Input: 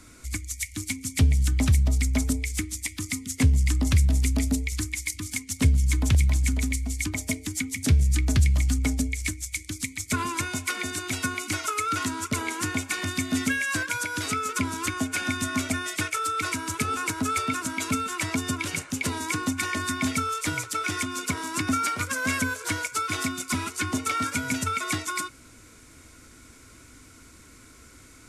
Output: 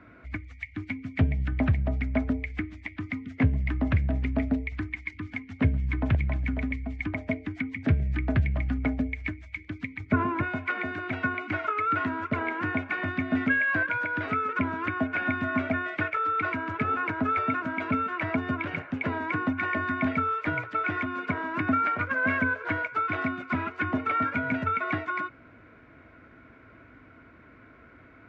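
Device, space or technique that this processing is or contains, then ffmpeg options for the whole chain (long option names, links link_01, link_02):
bass cabinet: -filter_complex "[0:a]highpass=70,equalizer=frequency=73:width_type=q:width=4:gain=-5,equalizer=frequency=650:width_type=q:width=4:gain=8,equalizer=frequency=1600:width_type=q:width=4:gain=4,lowpass=frequency=2300:width=0.5412,lowpass=frequency=2300:width=1.3066,asettb=1/sr,asplit=3[link_01][link_02][link_03];[link_01]atrim=end=10.004[link_04];[link_02]atrim=start=10:end=10.43,asetpts=PTS-STARTPTS,afade=type=in:duration=0.004:curve=qsin,afade=type=out:start_time=0.426:duration=0.004:curve=qsin,tiltshelf=frequency=1100:gain=5.5[link_05];[link_03]atrim=start=10.426[link_06];[link_04][link_05]acrossfade=duration=0.004:curve1=hsin:curve2=qsin[link_07];[link_07][link_06]acrossfade=duration=0.004:curve1=qsin:curve2=hsin"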